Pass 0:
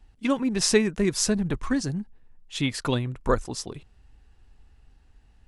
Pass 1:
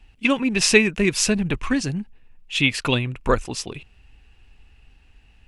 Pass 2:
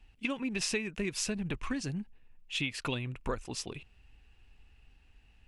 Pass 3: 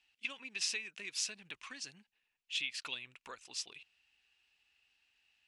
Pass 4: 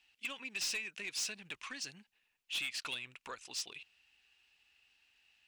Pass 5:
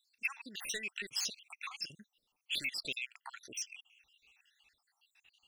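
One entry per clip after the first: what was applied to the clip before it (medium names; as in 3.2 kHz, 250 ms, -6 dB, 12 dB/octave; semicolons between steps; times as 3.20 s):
peaking EQ 2.6 kHz +13.5 dB 0.62 oct; trim +3 dB
compression 4:1, threshold -23 dBFS, peak gain reduction 12.5 dB; trim -8 dB
band-pass filter 4.5 kHz, Q 0.83
saturation -36 dBFS, distortion -9 dB; trim +4 dB
random holes in the spectrogram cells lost 70%; trim +6 dB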